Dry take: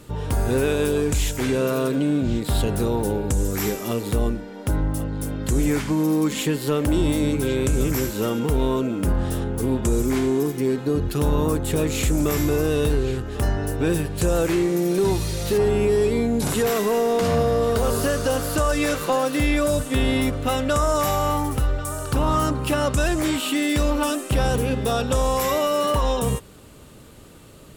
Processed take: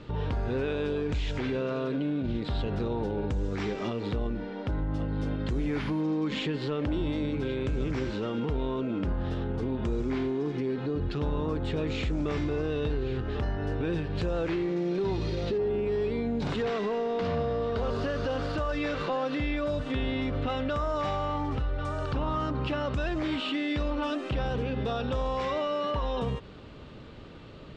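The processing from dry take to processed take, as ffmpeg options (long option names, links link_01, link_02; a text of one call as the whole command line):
ffmpeg -i in.wav -filter_complex "[0:a]asettb=1/sr,asplit=3[link_01][link_02][link_03];[link_01]atrim=end=5.524[link_04];[link_02]atrim=start=5.52:end=6.01,asetpts=PTS-STARTPTS,afade=type=in:duration=0.004:curve=qsin,afade=type=out:start_time=0.486:duration=0.004:curve=qsin,aeval=exprs='val(0)+0.0282*sin(2*PI*10000*n/s)':channel_layout=same[link_05];[link_03]atrim=start=6.006[link_06];[link_04][link_05]acrossfade=duration=0.004:curve1=hsin:curve2=qsin[link_07];[link_07][link_06]acrossfade=duration=0.004:curve1=qsin:curve2=hsin,asettb=1/sr,asplit=3[link_08][link_09][link_10];[link_08]atrim=end=15.174[link_11];[link_09]atrim=start=15.17:end=15.85,asetpts=PTS-STARTPTS,afade=type=in:duration=0.004:curve=qsin,afade=type=out:start_time=0.676:duration=0.004:curve=qsin,equalizer=frequency=350:width=1:gain=8[link_12];[link_10]atrim=start=15.846[link_13];[link_11][link_12]acrossfade=duration=0.004:curve1=hsin:curve2=qsin[link_14];[link_14][link_13]acrossfade=duration=0.004:curve1=qsin:curve2=hsin,lowpass=frequency=4200:width=0.5412,lowpass=frequency=4200:width=1.3066,alimiter=limit=-23dB:level=0:latency=1:release=97" out.wav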